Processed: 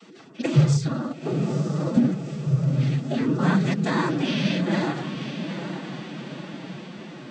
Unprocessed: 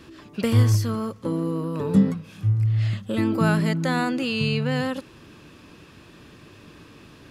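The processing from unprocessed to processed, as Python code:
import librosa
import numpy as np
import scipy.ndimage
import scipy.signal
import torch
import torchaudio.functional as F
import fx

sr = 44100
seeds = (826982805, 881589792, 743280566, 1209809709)

y = fx.noise_vocoder(x, sr, seeds[0], bands=16)
y = fx.echo_diffused(y, sr, ms=901, feedback_pct=58, wet_db=-8.5)
y = fx.pitch_keep_formants(y, sr, semitones=4.0)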